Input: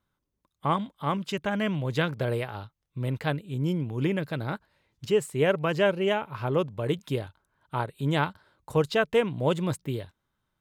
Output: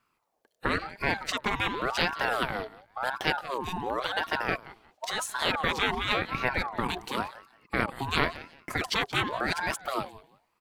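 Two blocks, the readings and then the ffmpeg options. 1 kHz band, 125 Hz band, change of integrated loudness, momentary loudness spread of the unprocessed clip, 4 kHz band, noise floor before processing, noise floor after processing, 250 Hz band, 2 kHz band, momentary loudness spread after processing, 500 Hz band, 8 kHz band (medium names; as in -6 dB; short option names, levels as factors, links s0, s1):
+2.5 dB, -10.0 dB, -1.5 dB, 11 LU, +5.5 dB, -81 dBFS, -75 dBFS, -6.5 dB, +5.0 dB, 8 LU, -7.5 dB, +5.5 dB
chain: -filter_complex "[0:a]afftfilt=real='re*lt(hypot(re,im),0.224)':imag='im*lt(hypot(re,im),0.224)':win_size=1024:overlap=0.75,lowshelf=f=87:g=-2.5,asplit=2[s0][s1];[s1]aecho=0:1:178|356:0.126|0.0277[s2];[s0][s2]amix=inputs=2:normalize=0,aeval=exprs='val(0)*sin(2*PI*900*n/s+900*0.4/0.93*sin(2*PI*0.93*n/s))':c=same,volume=2.51"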